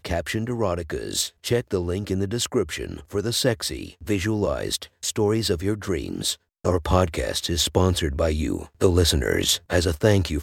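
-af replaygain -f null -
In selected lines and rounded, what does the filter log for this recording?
track_gain = +3.7 dB
track_peak = 0.489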